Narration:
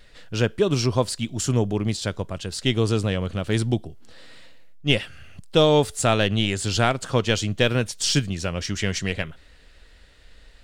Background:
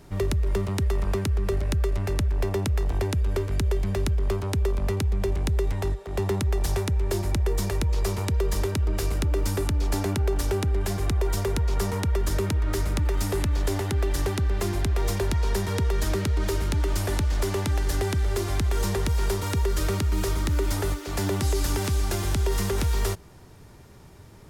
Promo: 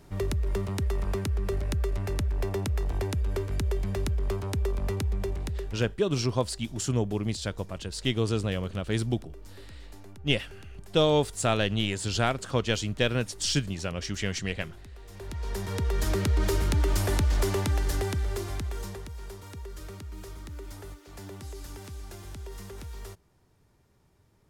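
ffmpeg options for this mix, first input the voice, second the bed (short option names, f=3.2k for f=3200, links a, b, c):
-filter_complex "[0:a]adelay=5400,volume=-5.5dB[a];[1:a]volume=19dB,afade=t=out:st=5.11:d=0.89:silence=0.112202,afade=t=in:st=15.09:d=1.25:silence=0.0707946,afade=t=out:st=17.39:d=1.7:silence=0.149624[b];[a][b]amix=inputs=2:normalize=0"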